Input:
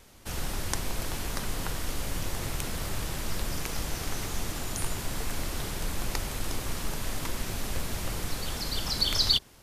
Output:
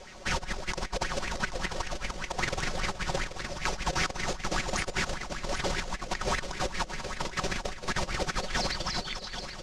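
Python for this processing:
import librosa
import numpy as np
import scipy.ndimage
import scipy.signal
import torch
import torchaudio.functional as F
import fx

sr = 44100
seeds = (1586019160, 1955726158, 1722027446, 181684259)

y = x + 0.55 * np.pad(x, (int(5.4 * sr / 1000.0), 0))[:len(x)]
y = fx.over_compress(y, sr, threshold_db=-32.0, ratio=-0.5)
y = fx.ladder_lowpass(y, sr, hz=7400.0, resonance_pct=30)
y = fx.echo_feedback(y, sr, ms=784, feedback_pct=50, wet_db=-10.0)
y = fx.bell_lfo(y, sr, hz=5.1, low_hz=500.0, high_hz=2200.0, db=14)
y = y * 10.0 ** (5.0 / 20.0)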